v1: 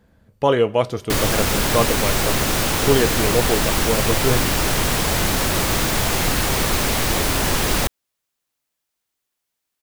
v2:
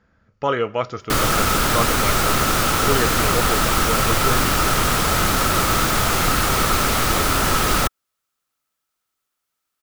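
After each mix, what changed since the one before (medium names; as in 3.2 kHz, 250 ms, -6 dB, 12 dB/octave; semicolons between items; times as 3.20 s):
speech: add rippled Chebyshev low-pass 7.1 kHz, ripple 6 dB; master: add peaking EQ 1.3 kHz +13 dB 0.24 oct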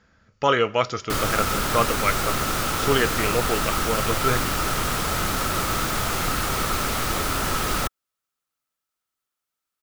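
speech: add treble shelf 2.5 kHz +11 dB; background -6.0 dB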